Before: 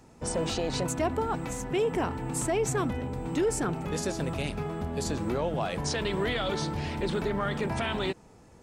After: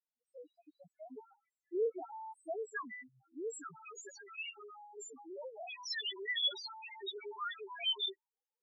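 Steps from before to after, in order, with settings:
gate on every frequency bin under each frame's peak −20 dB strong
noise reduction from a noise print of the clip's start 24 dB
first difference
spectral peaks only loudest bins 1
low-pass filter sweep 320 Hz → 3,700 Hz, 0:01.56–0:03.10
level +16 dB

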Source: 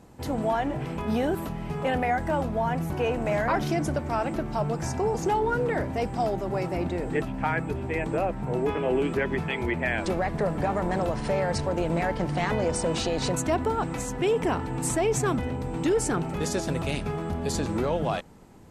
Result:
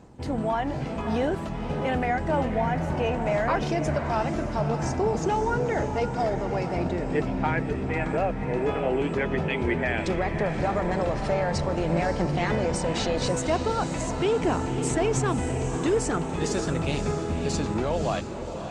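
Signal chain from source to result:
low-pass filter 8,100 Hz 24 dB per octave
phase shifter 0.41 Hz, delay 2 ms, feedback 20%
feedback delay with all-pass diffusion 561 ms, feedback 47%, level −8 dB
Opus 48 kbit/s 48,000 Hz

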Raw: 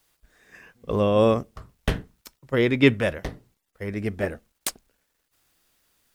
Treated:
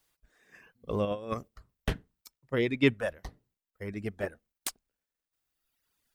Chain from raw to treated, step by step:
reverb reduction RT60 1.7 s
0:01.05–0:01.48: compressor whose output falls as the input rises −26 dBFS, ratio −0.5
level −6.5 dB

